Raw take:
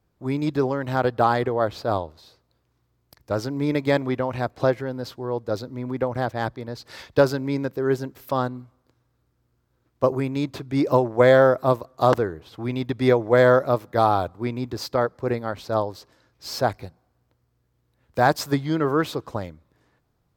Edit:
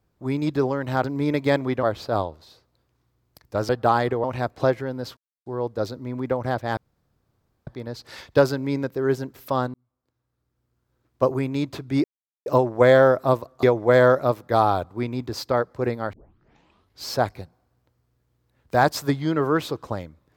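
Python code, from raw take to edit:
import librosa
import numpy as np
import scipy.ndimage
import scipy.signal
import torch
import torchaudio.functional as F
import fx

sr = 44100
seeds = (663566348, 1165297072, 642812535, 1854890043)

y = fx.edit(x, sr, fx.swap(start_s=1.04, length_s=0.55, other_s=3.45, other_length_s=0.79),
    fx.insert_silence(at_s=5.17, length_s=0.29),
    fx.insert_room_tone(at_s=6.48, length_s=0.9),
    fx.fade_in_span(start_s=8.55, length_s=1.54),
    fx.insert_silence(at_s=10.85, length_s=0.42),
    fx.cut(start_s=12.02, length_s=1.05),
    fx.tape_start(start_s=15.57, length_s=0.91), tone=tone)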